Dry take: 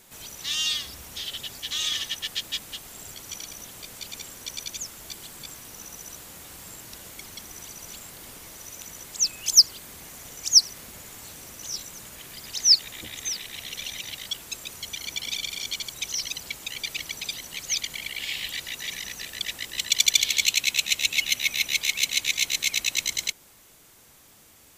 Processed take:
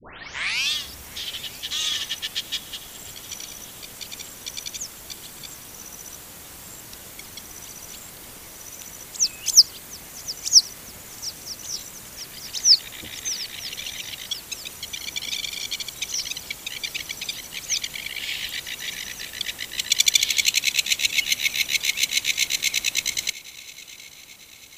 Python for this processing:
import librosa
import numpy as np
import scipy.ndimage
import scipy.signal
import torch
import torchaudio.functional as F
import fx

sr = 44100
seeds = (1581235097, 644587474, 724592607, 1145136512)

y = fx.tape_start_head(x, sr, length_s=0.72)
y = fx.echo_swing(y, sr, ms=944, ratio=3, feedback_pct=50, wet_db=-20.0)
y = y * 10.0 ** (2.0 / 20.0)